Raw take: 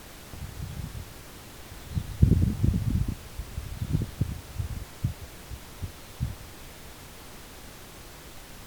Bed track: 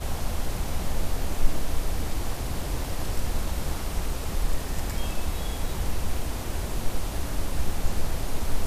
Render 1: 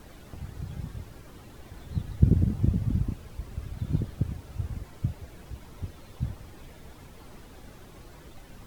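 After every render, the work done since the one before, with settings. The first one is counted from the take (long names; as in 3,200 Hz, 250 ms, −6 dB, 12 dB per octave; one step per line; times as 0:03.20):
broadband denoise 10 dB, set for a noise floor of −46 dBFS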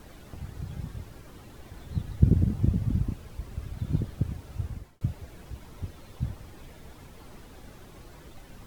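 0:04.55–0:05.01: fade out equal-power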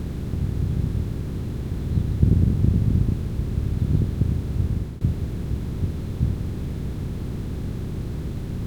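compressor on every frequency bin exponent 0.4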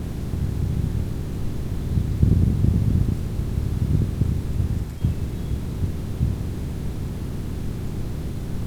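mix in bed track −11.5 dB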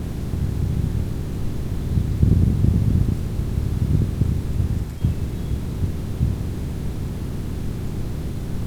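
level +1.5 dB
brickwall limiter −3 dBFS, peak gain reduction 1 dB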